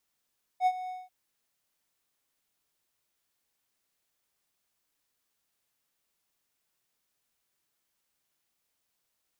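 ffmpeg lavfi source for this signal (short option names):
-f lavfi -i "aevalsrc='0.133*(1-4*abs(mod(738*t+0.25,1)-0.5))':d=0.49:s=44100,afade=t=in:d=0.063,afade=t=out:st=0.063:d=0.055:silence=0.178,afade=t=out:st=0.29:d=0.2"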